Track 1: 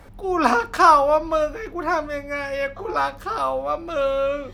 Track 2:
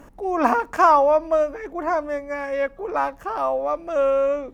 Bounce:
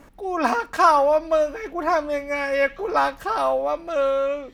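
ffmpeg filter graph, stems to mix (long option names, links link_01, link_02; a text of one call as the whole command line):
ffmpeg -i stem1.wav -i stem2.wav -filter_complex "[0:a]highpass=frequency=1400:width=0.5412,highpass=frequency=1400:width=1.3066,flanger=delay=2.5:depth=5.8:regen=-89:speed=1.7:shape=triangular,volume=0dB[link_01];[1:a]volume=-3dB[link_02];[link_01][link_02]amix=inputs=2:normalize=0,dynaudnorm=framelen=230:gausssize=9:maxgain=5.5dB" out.wav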